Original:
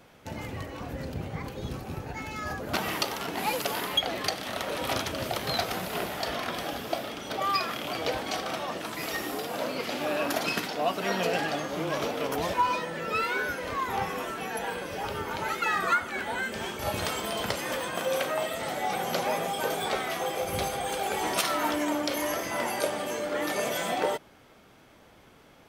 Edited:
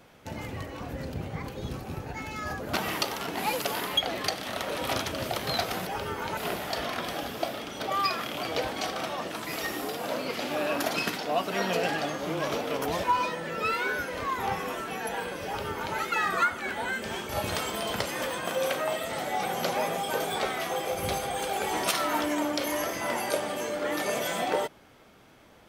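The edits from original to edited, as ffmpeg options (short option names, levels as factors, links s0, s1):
-filter_complex "[0:a]asplit=3[s0][s1][s2];[s0]atrim=end=5.872[s3];[s1]atrim=start=14.958:end=15.462[s4];[s2]atrim=start=5.868[s5];[s3][s4]acrossfade=d=0.004:c1=hsin:c2=hsin[s6];[s6][s5]acrossfade=d=0.004:c1=hsin:c2=hsin"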